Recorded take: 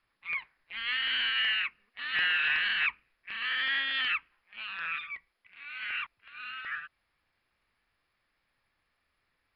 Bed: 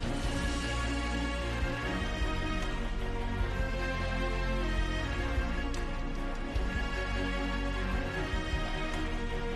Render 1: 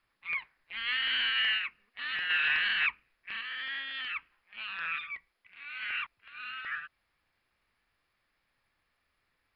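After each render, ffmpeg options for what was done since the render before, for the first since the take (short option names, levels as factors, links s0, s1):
-filter_complex "[0:a]asplit=3[s0][s1][s2];[s0]afade=t=out:st=1.57:d=0.02[s3];[s1]acompressor=threshold=0.0316:ratio=6:attack=3.2:release=140:knee=1:detection=peak,afade=t=in:st=1.57:d=0.02,afade=t=out:st=2.29:d=0.02[s4];[s2]afade=t=in:st=2.29:d=0.02[s5];[s3][s4][s5]amix=inputs=3:normalize=0,asplit=3[s6][s7][s8];[s6]atrim=end=3.412[s9];[s7]atrim=start=3.408:end=4.162,asetpts=PTS-STARTPTS,volume=0.422[s10];[s8]atrim=start=4.158[s11];[s9][s10]acrossfade=d=0.004:c1=hsin:c2=hsin[s12];[s12][s11]acrossfade=d=0.004:c1=hsin:c2=hsin"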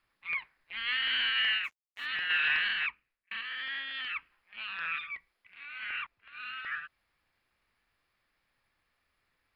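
-filter_complex "[0:a]asplit=3[s0][s1][s2];[s0]afade=t=out:st=1.63:d=0.02[s3];[s1]aeval=exprs='sgn(val(0))*max(abs(val(0))-0.00141,0)':c=same,afade=t=in:st=1.63:d=0.02,afade=t=out:st=2.05:d=0.02[s4];[s2]afade=t=in:st=2.05:d=0.02[s5];[s3][s4][s5]amix=inputs=3:normalize=0,asettb=1/sr,asplit=3[s6][s7][s8];[s6]atrim=end=5.664[s9];[s7]atrim=start=5.66:end=6.33,asetpts=PTS-STARTPTS,afade=t=in:d=0.004:c=qsin,afade=t=out:st=0.666:d=0.004:c=qsin,highshelf=f=3900:g=-8.5[s10];[s8]atrim=start=6.326[s11];[s9][s10]acrossfade=d=0.004:c1=hsin:c2=qsin[s12];[s12][s11]acrossfade=d=0.004:c1=qsin:c2=hsin,asplit=2[s13][s14];[s13]atrim=end=3.31,asetpts=PTS-STARTPTS,afade=t=out:st=2.57:d=0.74[s15];[s14]atrim=start=3.31,asetpts=PTS-STARTPTS,afade=t=in:d=0.004:c=hsin[s16];[s15][s16]concat=n=2:v=0:a=1"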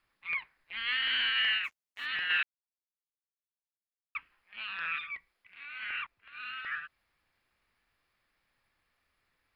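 -filter_complex "[0:a]asplit=3[s0][s1][s2];[s0]atrim=end=2.43,asetpts=PTS-STARTPTS,afade=t=out:st=2.426:d=0.004:c=hsin[s3];[s1]atrim=start=2.43:end=4.15,asetpts=PTS-STARTPTS,volume=0[s4];[s2]atrim=start=4.15,asetpts=PTS-STARTPTS,afade=t=in:d=0.004:c=hsin[s5];[s3][s4][s5]concat=n=3:v=0:a=1"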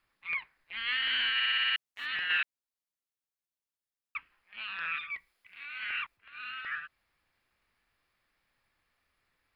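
-filter_complex "[0:a]asettb=1/sr,asplit=3[s0][s1][s2];[s0]atrim=end=5.104[s3];[s1]atrim=start=5.1:end=6.17,asetpts=PTS-STARTPTS,afade=t=in:d=0.004:c=qsin,afade=t=out:st=1.066:d=0.004:c=qsin,highshelf=f=3800:g=7.5[s4];[s2]atrim=start=6.166[s5];[s3][s4]acrossfade=d=0.004:c1=hsin:c2=qsin[s6];[s6][s5]acrossfade=d=0.004:c1=qsin:c2=hsin,asplit=8[s7][s8][s9][s10][s11][s12][s13][s14];[s7]atrim=end=1.402[s15];[s8]atrim=start=1.338:end=1.402[s16];[s9]atrim=start=1.338:end=1.402[s17];[s10]atrim=start=1.338:end=1.402[s18];[s11]atrim=start=1.338:end=1.402[s19];[s12]atrim=start=1.338:end=1.402[s20];[s13]atrim=start=1.338:end=1.402[s21];[s14]atrim=start=1.758[s22];[s15][s16]acrossfade=d=0.004:c1=hsin:c2=hsin[s23];[s23][s17]acrossfade=d=0.004:c1=hsin:c2=hsin[s24];[s24][s18]acrossfade=d=0.004:c1=hsin:c2=hsin[s25];[s25][s19]acrossfade=d=0.004:c1=hsin:c2=hsin[s26];[s26][s20]acrossfade=d=0.004:c1=hsin:c2=hsin[s27];[s27][s21]acrossfade=d=0.004:c1=hsin:c2=hsin[s28];[s28][s22]acrossfade=d=0.004:c1=hsin:c2=hsin"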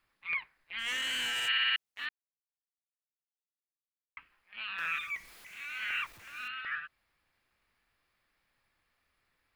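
-filter_complex "[0:a]asplit=3[s0][s1][s2];[s0]afade=t=out:st=0.78:d=0.02[s3];[s1]asoftclip=type=hard:threshold=0.0266,afade=t=in:st=0.78:d=0.02,afade=t=out:st=1.47:d=0.02[s4];[s2]afade=t=in:st=1.47:d=0.02[s5];[s3][s4][s5]amix=inputs=3:normalize=0,asettb=1/sr,asplit=3[s6][s7][s8];[s6]atrim=end=4.784[s9];[s7]atrim=start=4.78:end=6.48,asetpts=PTS-STARTPTS,afade=t=in:d=0.004:c=qsin,afade=t=out:st=1.696:d=0.004:c=qsin,aeval=exprs='val(0)+0.5*0.00355*sgn(val(0))':c=same[s10];[s8]atrim=start=6.476[s11];[s9][s10]acrossfade=d=0.004:c1=hsin:c2=qsin[s12];[s12][s11]acrossfade=d=0.004:c1=qsin:c2=hsin,asplit=3[s13][s14][s15];[s13]atrim=end=2.09,asetpts=PTS-STARTPTS,afade=t=out:st=2.086:d=0.004:c=hsin[s16];[s14]atrim=start=2.09:end=4.17,asetpts=PTS-STARTPTS,volume=0[s17];[s15]atrim=start=4.17,asetpts=PTS-STARTPTS,afade=t=in:d=0.004:c=hsin[s18];[s16][s17][s18]concat=n=3:v=0:a=1"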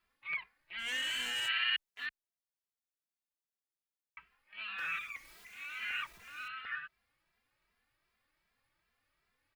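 -filter_complex "[0:a]asplit=2[s0][s1];[s1]adelay=2.6,afreqshift=2.6[s2];[s0][s2]amix=inputs=2:normalize=1"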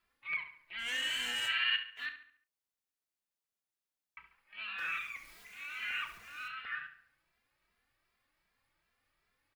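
-filter_complex "[0:a]asplit=2[s0][s1];[s1]adelay=33,volume=0.237[s2];[s0][s2]amix=inputs=2:normalize=0,asplit=2[s3][s4];[s4]adelay=70,lowpass=f=4000:p=1,volume=0.316,asplit=2[s5][s6];[s6]adelay=70,lowpass=f=4000:p=1,volume=0.46,asplit=2[s7][s8];[s8]adelay=70,lowpass=f=4000:p=1,volume=0.46,asplit=2[s9][s10];[s10]adelay=70,lowpass=f=4000:p=1,volume=0.46,asplit=2[s11][s12];[s12]adelay=70,lowpass=f=4000:p=1,volume=0.46[s13];[s3][s5][s7][s9][s11][s13]amix=inputs=6:normalize=0"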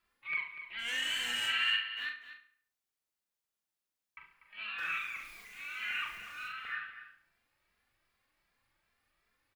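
-filter_complex "[0:a]asplit=2[s0][s1];[s1]adelay=42,volume=0.531[s2];[s0][s2]amix=inputs=2:normalize=0,aecho=1:1:243:0.251"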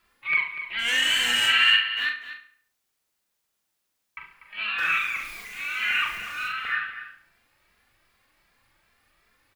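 -af "volume=3.98"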